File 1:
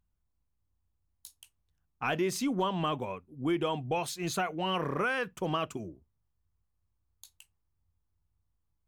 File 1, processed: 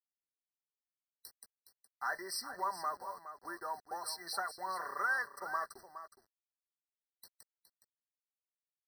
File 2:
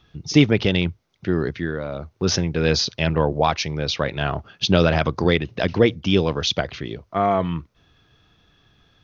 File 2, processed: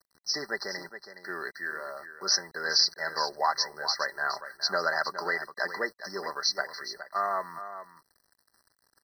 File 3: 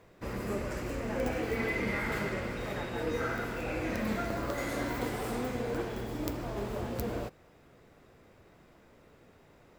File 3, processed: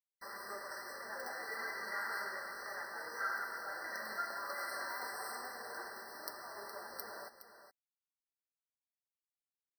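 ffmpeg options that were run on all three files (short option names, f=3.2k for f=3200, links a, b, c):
-filter_complex "[0:a]highpass=1.2k,aecho=1:1:5.1:0.45,acrusher=bits=8:mix=0:aa=0.000001,asplit=2[a][b];[b]aecho=0:1:416:0.266[c];[a][c]amix=inputs=2:normalize=0,afftfilt=real='re*eq(mod(floor(b*sr/1024/2000),2),0)':imag='im*eq(mod(floor(b*sr/1024/2000),2),0)':win_size=1024:overlap=0.75"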